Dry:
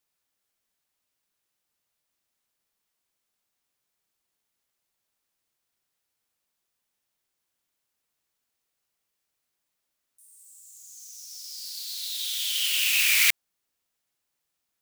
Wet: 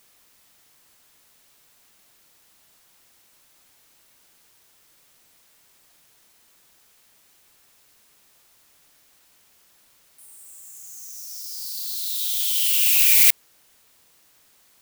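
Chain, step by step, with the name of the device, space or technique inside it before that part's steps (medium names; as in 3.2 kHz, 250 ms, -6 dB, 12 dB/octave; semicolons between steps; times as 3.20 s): turntable without a phono preamp (RIAA curve recording; white noise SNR 30 dB); trim -7 dB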